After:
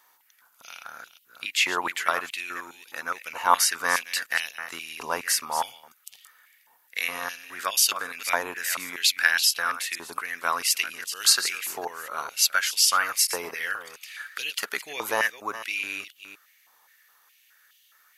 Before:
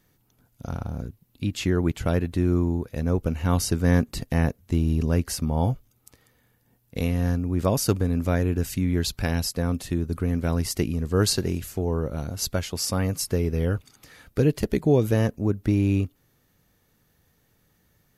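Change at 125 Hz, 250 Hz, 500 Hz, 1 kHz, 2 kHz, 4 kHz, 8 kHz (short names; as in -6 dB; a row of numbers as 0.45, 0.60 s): under -35 dB, -22.5 dB, -10.0 dB, +8.0 dB, +11.5 dB, +8.5 dB, +8.0 dB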